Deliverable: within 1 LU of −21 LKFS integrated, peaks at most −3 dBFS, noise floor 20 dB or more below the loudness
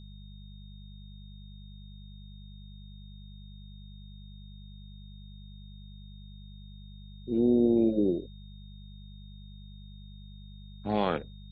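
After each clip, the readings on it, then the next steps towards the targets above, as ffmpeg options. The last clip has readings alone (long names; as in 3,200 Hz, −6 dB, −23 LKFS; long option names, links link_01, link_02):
mains hum 50 Hz; hum harmonics up to 200 Hz; level of the hum −44 dBFS; interfering tone 3,700 Hz; level of the tone −58 dBFS; integrated loudness −27.5 LKFS; sample peak −13.5 dBFS; target loudness −21.0 LKFS
→ -af "bandreject=frequency=50:width_type=h:width=4,bandreject=frequency=100:width_type=h:width=4,bandreject=frequency=150:width_type=h:width=4,bandreject=frequency=200:width_type=h:width=4"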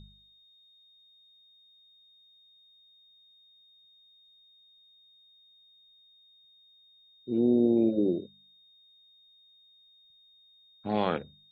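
mains hum none found; interfering tone 3,700 Hz; level of the tone −58 dBFS
→ -af "bandreject=frequency=3700:width=30"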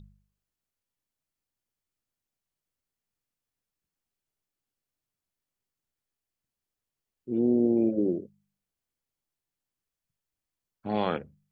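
interfering tone none found; integrated loudness −27.5 LKFS; sample peak −14.0 dBFS; target loudness −21.0 LKFS
→ -af "volume=6.5dB"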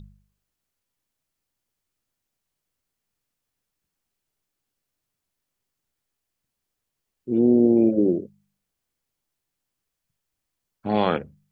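integrated loudness −21.0 LKFS; sample peak −7.5 dBFS; background noise floor −83 dBFS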